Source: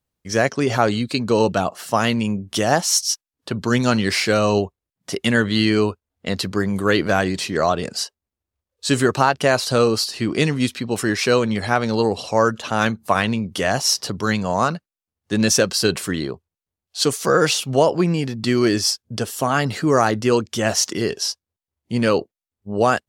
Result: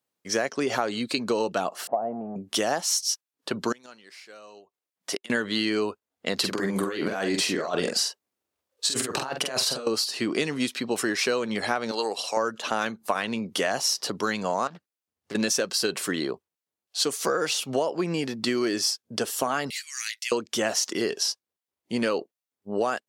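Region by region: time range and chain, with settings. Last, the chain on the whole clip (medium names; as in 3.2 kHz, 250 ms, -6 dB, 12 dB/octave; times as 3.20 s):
1.87–2.36 s: jump at every zero crossing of -24 dBFS + four-pole ladder low-pass 750 Hz, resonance 75%
3.72–5.30 s: bass shelf 290 Hz -11.5 dB + inverted gate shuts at -14 dBFS, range -26 dB
6.37–9.87 s: compressor with a negative ratio -23 dBFS, ratio -0.5 + doubling 46 ms -4.5 dB
11.91–12.37 s: high-pass 910 Hz 6 dB/octave + treble shelf 8.2 kHz +6.5 dB
14.67–15.35 s: peaking EQ 67 Hz +12.5 dB 2 oct + compression 12:1, threshold -29 dBFS + loudspeaker Doppler distortion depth 0.53 ms
19.70–20.32 s: elliptic high-pass 2.1 kHz, stop band 80 dB + treble shelf 11 kHz +7 dB
whole clip: high-pass 270 Hz 12 dB/octave; compression, threshold -22 dBFS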